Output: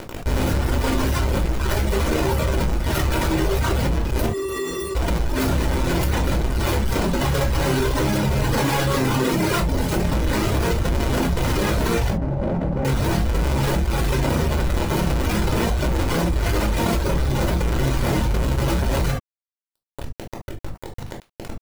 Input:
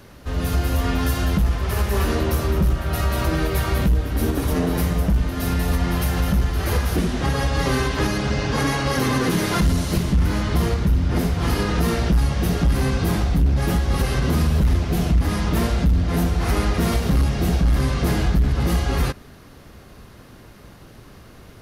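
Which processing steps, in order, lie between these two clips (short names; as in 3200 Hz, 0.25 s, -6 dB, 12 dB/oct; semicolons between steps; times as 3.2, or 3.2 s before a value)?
half-waves squared off; reverb removal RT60 1.8 s; bell 87 Hz -8.5 dB 0.31 oct; limiter -19.5 dBFS, peak gain reduction 10 dB; 12.1–12.85 rippled Chebyshev low-pass 820 Hz, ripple 9 dB; crossover distortion -37 dBFS; 4.26–4.95 resonator 390 Hz, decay 0.22 s, harmonics odd, mix 100%; reverb, pre-delay 3 ms, DRR 2 dB; fast leveller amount 70%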